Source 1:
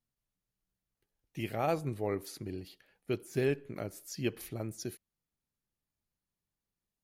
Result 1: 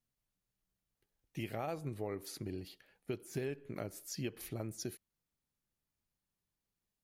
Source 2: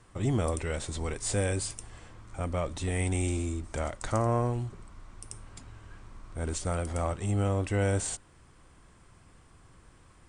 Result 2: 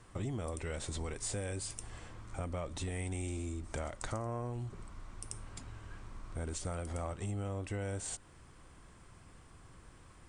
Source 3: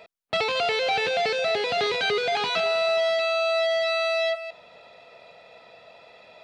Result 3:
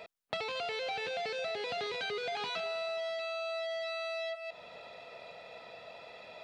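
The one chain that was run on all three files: compressor 5:1, threshold -36 dBFS

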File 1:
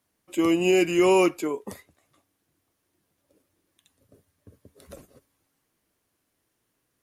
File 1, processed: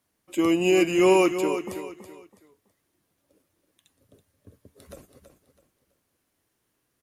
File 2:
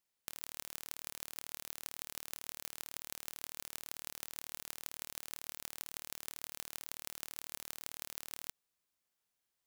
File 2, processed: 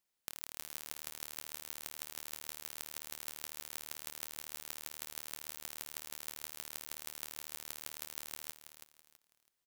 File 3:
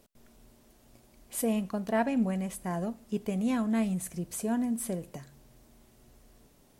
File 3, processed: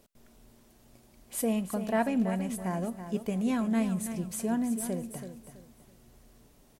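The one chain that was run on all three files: feedback echo 0.328 s, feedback 30%, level -10 dB

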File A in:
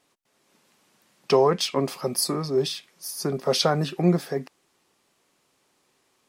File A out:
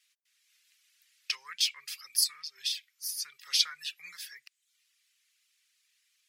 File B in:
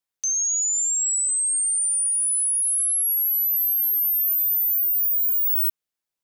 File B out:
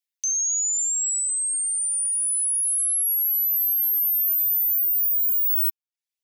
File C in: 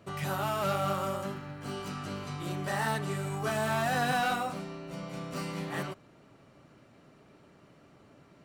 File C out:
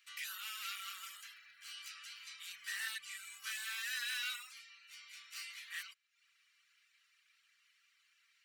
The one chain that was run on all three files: reverb removal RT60 0.6 s; inverse Chebyshev high-pass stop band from 740 Hz, stop band 50 dB; bell 8700 Hz -2.5 dB 0.41 oct

